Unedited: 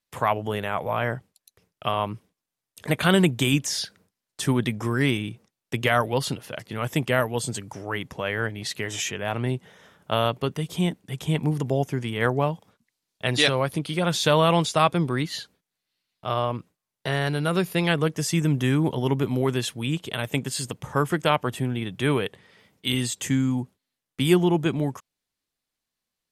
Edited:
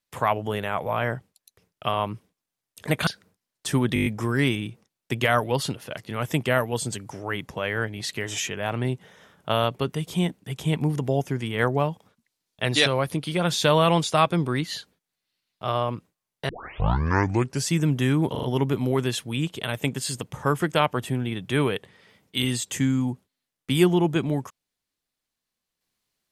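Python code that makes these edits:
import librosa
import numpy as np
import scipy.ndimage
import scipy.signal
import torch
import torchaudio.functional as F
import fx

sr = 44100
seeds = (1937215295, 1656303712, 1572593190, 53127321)

y = fx.edit(x, sr, fx.cut(start_s=3.07, length_s=0.74),
    fx.stutter(start_s=4.68, slice_s=0.02, count=7),
    fx.tape_start(start_s=17.11, length_s=1.2),
    fx.stutter(start_s=18.93, slice_s=0.04, count=4), tone=tone)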